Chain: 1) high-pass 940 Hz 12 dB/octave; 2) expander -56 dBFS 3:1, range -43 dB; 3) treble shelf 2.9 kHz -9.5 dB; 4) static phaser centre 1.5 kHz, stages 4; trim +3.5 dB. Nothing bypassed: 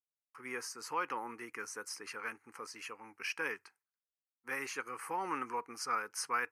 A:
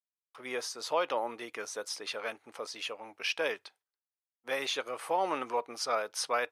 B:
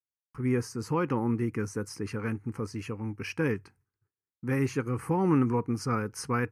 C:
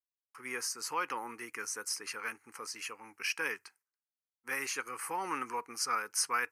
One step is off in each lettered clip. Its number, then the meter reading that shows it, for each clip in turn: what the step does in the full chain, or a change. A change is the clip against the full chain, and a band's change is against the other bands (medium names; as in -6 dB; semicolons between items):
4, 500 Hz band +8.0 dB; 1, 125 Hz band +32.0 dB; 3, 8 kHz band +7.5 dB